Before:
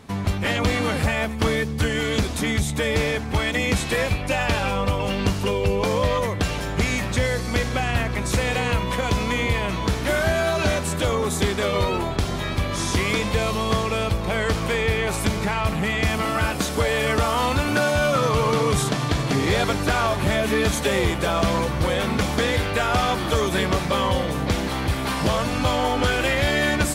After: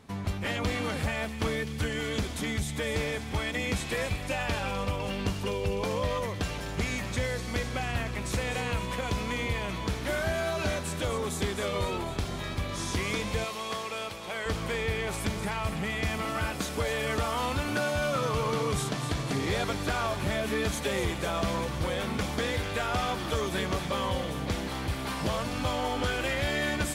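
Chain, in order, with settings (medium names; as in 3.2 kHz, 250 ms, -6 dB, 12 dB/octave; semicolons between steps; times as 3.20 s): 13.44–14.46 s: high-pass 610 Hz 6 dB/octave; on a send: feedback echo behind a high-pass 253 ms, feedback 60%, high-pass 2.6 kHz, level -8.5 dB; on the sum: trim -8.5 dB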